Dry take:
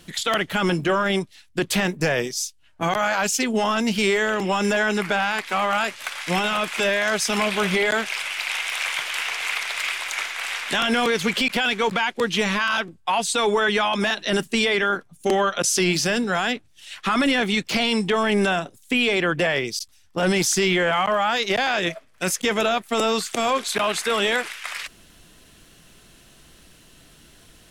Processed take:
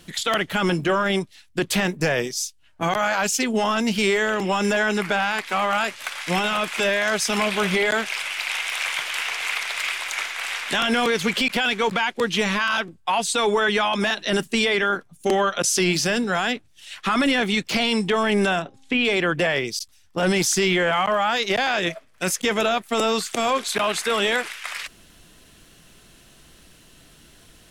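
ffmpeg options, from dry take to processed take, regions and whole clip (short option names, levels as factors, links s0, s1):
-filter_complex "[0:a]asettb=1/sr,asplit=3[s0][s1][s2];[s0]atrim=end=18.624[s3];[s1]atrim=start=18.62:end=19.05,asetpts=PTS-STARTPTS,afade=t=in:d=0.004:c=qsin,afade=t=out:st=0.426:d=0.004:c=qsin,lowpass=3700,bandreject=f=267.5:t=h:w=4,bandreject=f=535:t=h:w=4,bandreject=f=802.5:t=h:w=4,bandreject=f=1070:t=h:w=4,acompressor=mode=upward:threshold=0.00794:ratio=2.5:attack=3.2:release=140:knee=2.83:detection=peak[s4];[s2]atrim=start=19.046[s5];[s3][s4]acrossfade=d=0.004:c1=hsin:c2=qsin[s6];[s6][s5]acrossfade=d=0.004:c1=qsin:c2=hsin"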